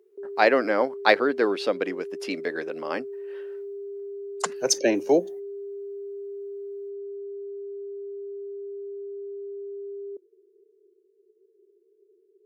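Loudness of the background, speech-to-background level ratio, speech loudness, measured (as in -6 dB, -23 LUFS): -37.0 LUFS, 12.5 dB, -24.5 LUFS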